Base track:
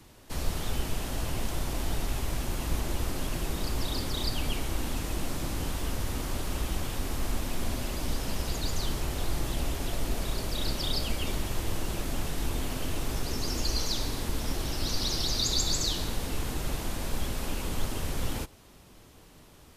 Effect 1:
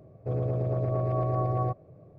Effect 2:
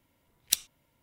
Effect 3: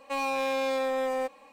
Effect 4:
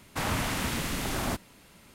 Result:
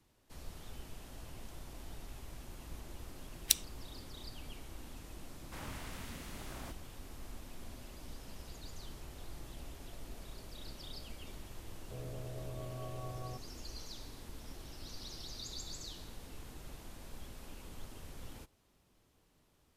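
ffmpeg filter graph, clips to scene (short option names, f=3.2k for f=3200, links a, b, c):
-filter_complex "[0:a]volume=-17.5dB[a];[2:a]atrim=end=1.02,asetpts=PTS-STARTPTS,volume=-2.5dB,afade=t=in:d=0.004:c=hsin,afade=t=out:st=1.016:d=0.004:c=hsin,adelay=2980[b];[4:a]atrim=end=1.94,asetpts=PTS-STARTPTS,volume=-17.5dB,afade=t=in:d=0.004:c=hsin,afade=t=out:st=1.936:d=0.004:c=hsin,adelay=5360[c];[1:a]atrim=end=2.18,asetpts=PTS-STARTPTS,volume=-17dB,afade=t=in:d=0.004:c=hsin,afade=t=out:st=2.176:d=0.004:c=hsin,adelay=11650[d];[a][b][c][d]amix=inputs=4:normalize=0"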